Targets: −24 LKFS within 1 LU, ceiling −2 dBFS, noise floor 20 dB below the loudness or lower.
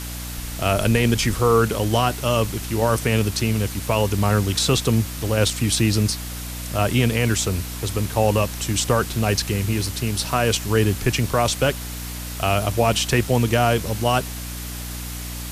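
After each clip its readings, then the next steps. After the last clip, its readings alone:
mains hum 60 Hz; hum harmonics up to 300 Hz; level of the hum −30 dBFS; background noise floor −31 dBFS; target noise floor −42 dBFS; integrated loudness −21.5 LKFS; sample peak −5.5 dBFS; target loudness −24.0 LKFS
→ mains-hum notches 60/120/180/240/300 Hz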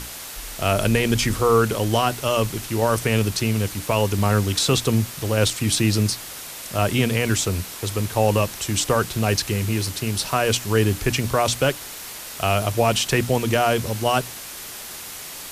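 mains hum none found; background noise floor −36 dBFS; target noise floor −42 dBFS
→ broadband denoise 6 dB, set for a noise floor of −36 dBFS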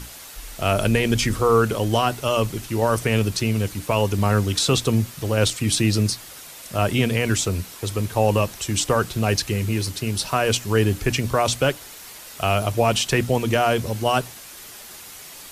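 background noise floor −41 dBFS; target noise floor −42 dBFS
→ broadband denoise 6 dB, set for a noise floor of −41 dBFS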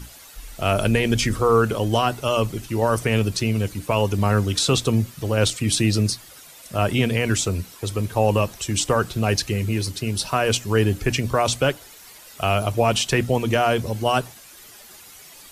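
background noise floor −45 dBFS; integrated loudness −21.5 LKFS; sample peak −6.5 dBFS; target loudness −24.0 LKFS
→ level −2.5 dB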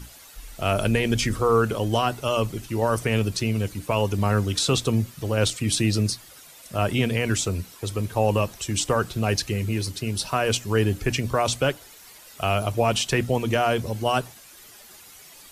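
integrated loudness −24.0 LKFS; sample peak −9.0 dBFS; background noise floor −48 dBFS

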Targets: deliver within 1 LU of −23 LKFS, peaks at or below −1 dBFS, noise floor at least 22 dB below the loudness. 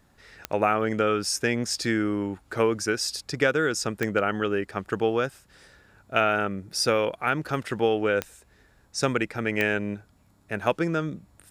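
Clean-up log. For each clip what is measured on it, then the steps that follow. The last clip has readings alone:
number of clicks 4; integrated loudness −26.0 LKFS; sample peak −6.5 dBFS; target loudness −23.0 LKFS
→ click removal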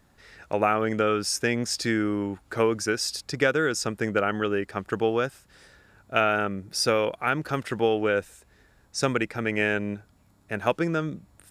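number of clicks 0; integrated loudness −26.0 LKFS; sample peak −6.5 dBFS; target loudness −23.0 LKFS
→ level +3 dB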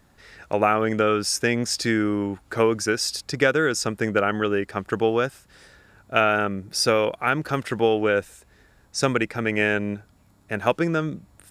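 integrated loudness −23.0 LKFS; sample peak −3.5 dBFS; background noise floor −58 dBFS

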